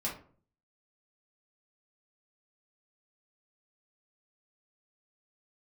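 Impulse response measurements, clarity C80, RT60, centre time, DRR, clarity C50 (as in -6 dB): 13.5 dB, 0.45 s, 27 ms, -5.5 dB, 7.5 dB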